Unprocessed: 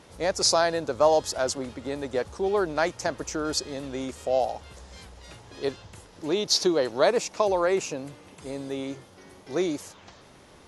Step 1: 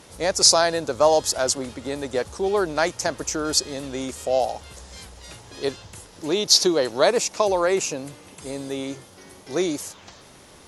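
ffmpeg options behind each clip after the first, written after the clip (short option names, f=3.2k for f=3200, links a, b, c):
-af "aemphasis=mode=production:type=cd,volume=3dB"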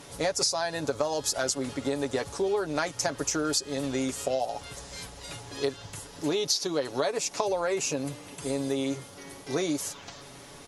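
-af "aecho=1:1:7.1:0.57,acompressor=threshold=-24dB:ratio=12"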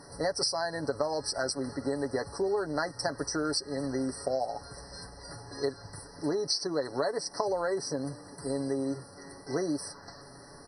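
-af "afftfilt=real='re*eq(mod(floor(b*sr/1024/2000),2),0)':imag='im*eq(mod(floor(b*sr/1024/2000),2),0)':win_size=1024:overlap=0.75,volume=-2dB"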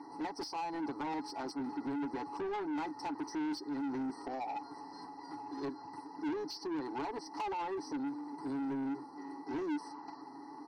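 -filter_complex "[0:a]asplit=3[a][b][c];[a]bandpass=f=300:t=q:w=8,volume=0dB[d];[b]bandpass=f=870:t=q:w=8,volume=-6dB[e];[c]bandpass=f=2.24k:t=q:w=8,volume=-9dB[f];[d][e][f]amix=inputs=3:normalize=0,asplit=2[g][h];[h]highpass=f=720:p=1,volume=29dB,asoftclip=type=tanh:threshold=-25.5dB[i];[g][i]amix=inputs=2:normalize=0,lowpass=f=3.6k:p=1,volume=-6dB,volume=-4dB"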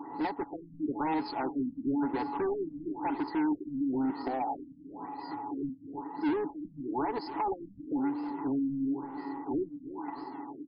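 -af "aecho=1:1:317|634|951|1268:0.211|0.0909|0.0391|0.0168,afftfilt=real='re*lt(b*sr/1024,270*pow(5300/270,0.5+0.5*sin(2*PI*1*pts/sr)))':imag='im*lt(b*sr/1024,270*pow(5300/270,0.5+0.5*sin(2*PI*1*pts/sr)))':win_size=1024:overlap=0.75,volume=7dB"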